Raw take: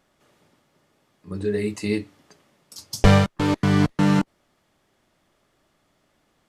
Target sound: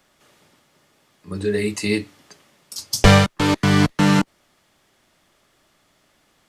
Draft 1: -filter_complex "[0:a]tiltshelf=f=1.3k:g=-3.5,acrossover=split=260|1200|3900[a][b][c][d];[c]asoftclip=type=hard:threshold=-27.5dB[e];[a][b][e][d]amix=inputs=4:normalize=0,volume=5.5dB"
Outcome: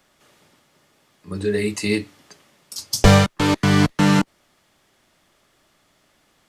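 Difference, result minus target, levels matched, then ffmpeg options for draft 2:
hard clip: distortion +15 dB
-filter_complex "[0:a]tiltshelf=f=1.3k:g=-3.5,acrossover=split=260|1200|3900[a][b][c][d];[c]asoftclip=type=hard:threshold=-17.5dB[e];[a][b][e][d]amix=inputs=4:normalize=0,volume=5.5dB"

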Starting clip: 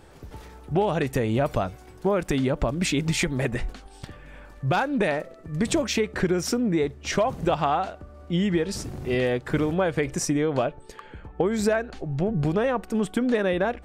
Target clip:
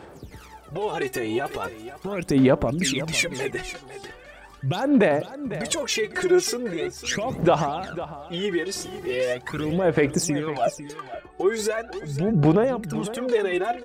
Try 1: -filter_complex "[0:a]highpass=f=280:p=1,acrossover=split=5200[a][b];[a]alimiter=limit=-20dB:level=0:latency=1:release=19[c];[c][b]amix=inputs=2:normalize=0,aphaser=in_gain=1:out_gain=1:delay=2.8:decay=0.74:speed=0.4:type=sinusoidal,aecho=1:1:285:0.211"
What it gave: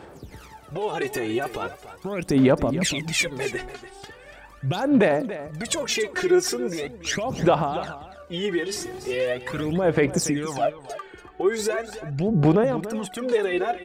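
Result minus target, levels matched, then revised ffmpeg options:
echo 0.216 s early
-filter_complex "[0:a]highpass=f=280:p=1,acrossover=split=5200[a][b];[a]alimiter=limit=-20dB:level=0:latency=1:release=19[c];[c][b]amix=inputs=2:normalize=0,aphaser=in_gain=1:out_gain=1:delay=2.8:decay=0.74:speed=0.4:type=sinusoidal,aecho=1:1:501:0.211"

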